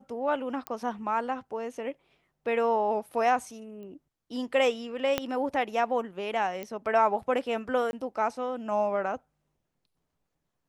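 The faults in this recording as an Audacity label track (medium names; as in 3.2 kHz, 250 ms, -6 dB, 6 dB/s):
0.670000	0.670000	pop -16 dBFS
3.830000	3.830000	pop -36 dBFS
5.180000	5.180000	pop -11 dBFS
6.630000	6.630000	pop -22 dBFS
7.910000	7.930000	dropout 21 ms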